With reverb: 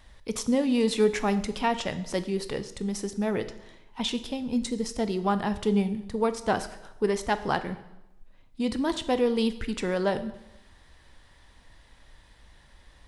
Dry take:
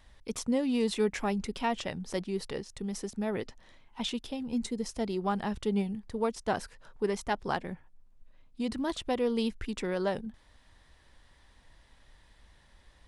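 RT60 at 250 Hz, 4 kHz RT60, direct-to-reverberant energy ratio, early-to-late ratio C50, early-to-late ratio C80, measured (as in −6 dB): 0.90 s, 0.85 s, 10.5 dB, 13.5 dB, 15.5 dB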